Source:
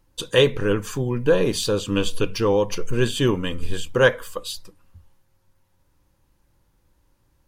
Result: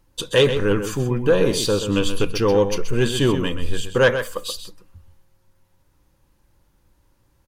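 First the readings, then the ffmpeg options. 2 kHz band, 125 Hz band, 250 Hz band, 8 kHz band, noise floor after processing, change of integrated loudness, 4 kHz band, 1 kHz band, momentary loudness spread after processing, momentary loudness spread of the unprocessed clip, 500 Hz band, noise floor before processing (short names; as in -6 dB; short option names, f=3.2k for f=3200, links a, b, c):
+1.0 dB, +2.0 dB, +2.0 dB, +2.5 dB, -63 dBFS, +1.5 dB, +1.5 dB, +1.5 dB, 9 LU, 13 LU, +1.5 dB, -66 dBFS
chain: -filter_complex "[0:a]acontrast=72,asplit=2[a][b];[b]adelay=128.3,volume=-9dB,highshelf=f=4k:g=-2.89[c];[a][c]amix=inputs=2:normalize=0,volume=-4.5dB"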